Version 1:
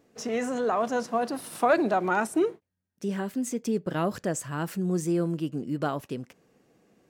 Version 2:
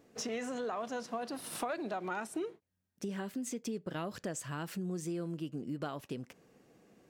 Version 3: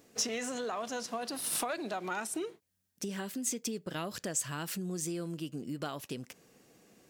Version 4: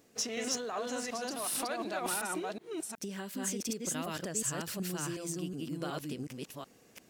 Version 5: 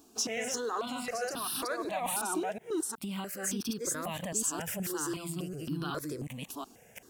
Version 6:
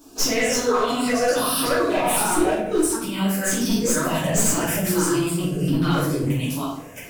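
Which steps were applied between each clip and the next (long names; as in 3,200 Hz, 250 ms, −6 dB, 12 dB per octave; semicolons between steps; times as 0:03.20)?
dynamic equaliser 3,500 Hz, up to +6 dB, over −47 dBFS, Q 0.82; downward compressor 4 to 1, threshold −37 dBFS, peak gain reduction 17.5 dB
high-shelf EQ 2,900 Hz +11.5 dB
delay that plays each chunk backwards 369 ms, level 0 dB; level −2.5 dB
in parallel at +2.5 dB: brickwall limiter −31.5 dBFS, peak gain reduction 10.5 dB; on the sum: step-sequenced phaser 3.7 Hz 530–2,100 Hz
wavefolder on the positive side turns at −28 dBFS; rectangular room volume 150 cubic metres, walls mixed, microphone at 2.8 metres; level +3.5 dB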